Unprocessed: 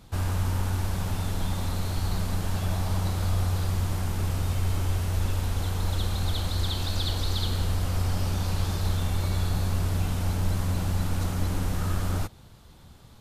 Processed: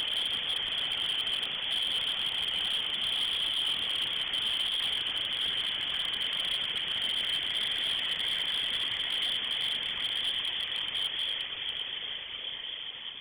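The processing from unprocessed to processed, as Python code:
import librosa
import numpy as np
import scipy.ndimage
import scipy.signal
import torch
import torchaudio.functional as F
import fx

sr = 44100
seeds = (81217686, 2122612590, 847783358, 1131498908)

y = fx.clip_asym(x, sr, top_db=-33.5, bottom_db=-18.5)
y = fx.tilt_eq(y, sr, slope=2.0)
y = fx.paulstretch(y, sr, seeds[0], factor=10.0, window_s=1.0, from_s=11.18)
y = fx.peak_eq(y, sr, hz=150.0, db=8.5, octaves=1.9)
y = fx.freq_invert(y, sr, carrier_hz=3300)
y = fx.over_compress(y, sr, threshold_db=-27.0, ratio=-0.5)
y = y + 0.32 * np.pad(y, (int(4.2 * sr / 1000.0), 0))[:len(y)]
y = fx.room_flutter(y, sr, wall_m=11.8, rt60_s=0.42)
y = fx.whisperise(y, sr, seeds[1])
y = fx.slew_limit(y, sr, full_power_hz=150.0)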